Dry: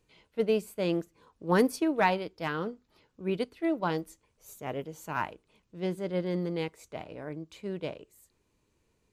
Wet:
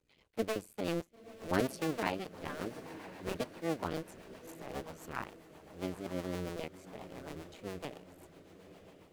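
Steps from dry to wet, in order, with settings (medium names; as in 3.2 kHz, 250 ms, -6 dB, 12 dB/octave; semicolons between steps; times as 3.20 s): cycle switcher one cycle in 2, muted; echo that smears into a reverb 1007 ms, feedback 50%, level -13 dB; rotary cabinet horn 7.5 Hz; trim -2.5 dB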